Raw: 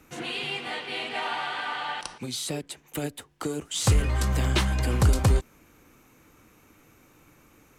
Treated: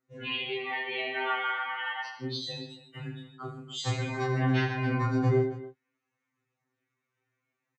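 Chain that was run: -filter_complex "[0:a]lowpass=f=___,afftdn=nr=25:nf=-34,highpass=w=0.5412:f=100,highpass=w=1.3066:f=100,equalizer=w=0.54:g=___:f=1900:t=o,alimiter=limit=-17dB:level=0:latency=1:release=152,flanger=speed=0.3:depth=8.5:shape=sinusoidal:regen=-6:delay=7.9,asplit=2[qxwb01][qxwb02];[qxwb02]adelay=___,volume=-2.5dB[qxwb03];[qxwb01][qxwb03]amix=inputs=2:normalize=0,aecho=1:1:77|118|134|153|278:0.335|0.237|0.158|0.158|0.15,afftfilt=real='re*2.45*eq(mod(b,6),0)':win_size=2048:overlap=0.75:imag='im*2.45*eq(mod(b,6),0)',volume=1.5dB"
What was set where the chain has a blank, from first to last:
5800, 9.5, 26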